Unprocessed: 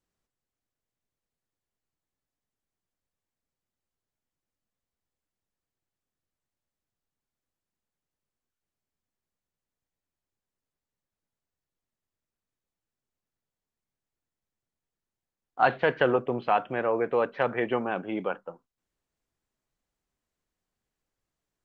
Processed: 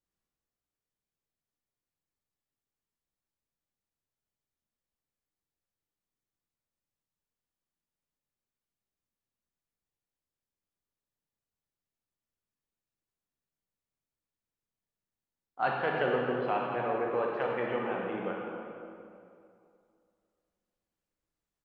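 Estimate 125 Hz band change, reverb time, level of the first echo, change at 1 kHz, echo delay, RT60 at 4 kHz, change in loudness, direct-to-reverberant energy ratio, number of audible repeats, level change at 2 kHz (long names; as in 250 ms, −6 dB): −3.5 dB, 2.4 s, −12.5 dB, −4.5 dB, 295 ms, 1.7 s, −5.0 dB, −2.0 dB, 1, −5.0 dB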